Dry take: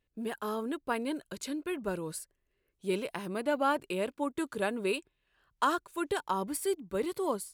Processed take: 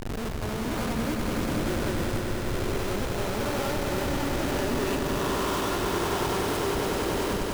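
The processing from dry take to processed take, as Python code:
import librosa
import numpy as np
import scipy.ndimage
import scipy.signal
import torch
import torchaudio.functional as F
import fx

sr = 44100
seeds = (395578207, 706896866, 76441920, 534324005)

y = fx.spec_swells(x, sr, rise_s=2.87)
y = fx.air_absorb(y, sr, metres=160.0, at=(3.64, 4.4))
y = fx.schmitt(y, sr, flips_db=-27.0)
y = fx.echo_swell(y, sr, ms=96, loudest=5, wet_db=-8.0)
y = y * 10.0 ** (-2.5 / 20.0)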